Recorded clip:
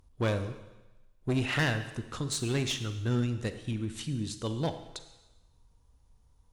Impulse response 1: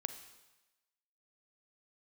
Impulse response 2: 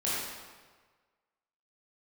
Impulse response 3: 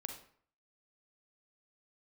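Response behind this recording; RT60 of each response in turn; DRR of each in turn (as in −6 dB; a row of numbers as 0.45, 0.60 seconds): 1; 1.1, 1.5, 0.55 seconds; 9.0, −9.0, 4.0 decibels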